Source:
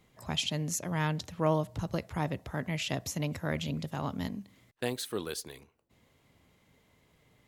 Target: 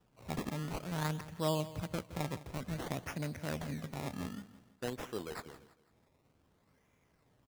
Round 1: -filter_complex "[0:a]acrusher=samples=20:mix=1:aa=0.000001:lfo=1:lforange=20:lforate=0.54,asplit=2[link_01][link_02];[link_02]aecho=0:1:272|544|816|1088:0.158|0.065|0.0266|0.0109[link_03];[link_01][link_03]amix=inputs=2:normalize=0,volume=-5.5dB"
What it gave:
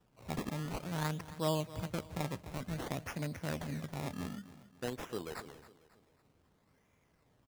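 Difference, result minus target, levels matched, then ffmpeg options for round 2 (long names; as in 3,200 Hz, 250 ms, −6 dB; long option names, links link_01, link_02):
echo 105 ms late
-filter_complex "[0:a]acrusher=samples=20:mix=1:aa=0.000001:lfo=1:lforange=20:lforate=0.54,asplit=2[link_01][link_02];[link_02]aecho=0:1:167|334|501|668:0.158|0.065|0.0266|0.0109[link_03];[link_01][link_03]amix=inputs=2:normalize=0,volume=-5.5dB"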